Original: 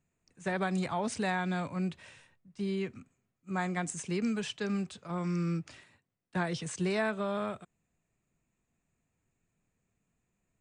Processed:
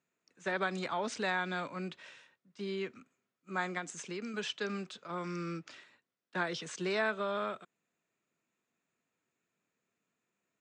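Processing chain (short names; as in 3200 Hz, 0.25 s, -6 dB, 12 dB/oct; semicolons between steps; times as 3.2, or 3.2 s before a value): 3.77–4.34 compressor, threshold -33 dBFS, peak gain reduction 6 dB; speaker cabinet 300–6900 Hz, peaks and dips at 760 Hz -4 dB, 1400 Hz +4 dB, 3500 Hz +3 dB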